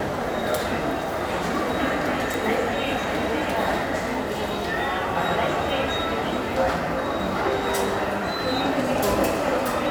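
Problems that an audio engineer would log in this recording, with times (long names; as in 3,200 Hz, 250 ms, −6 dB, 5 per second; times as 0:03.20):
0:02.34: click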